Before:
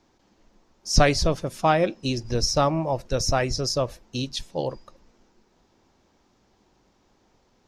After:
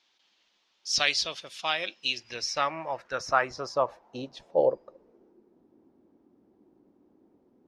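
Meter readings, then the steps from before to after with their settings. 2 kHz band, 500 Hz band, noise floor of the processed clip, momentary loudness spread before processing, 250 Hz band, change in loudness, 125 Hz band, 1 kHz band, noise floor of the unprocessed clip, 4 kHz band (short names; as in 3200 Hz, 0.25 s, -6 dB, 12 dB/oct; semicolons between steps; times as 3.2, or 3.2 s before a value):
+0.5 dB, -5.0 dB, -71 dBFS, 10 LU, -14.5 dB, -4.5 dB, -21.5 dB, -4.5 dB, -65 dBFS, -1.0 dB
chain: band-pass sweep 3300 Hz -> 300 Hz, 1.9–5.59; gain +7.5 dB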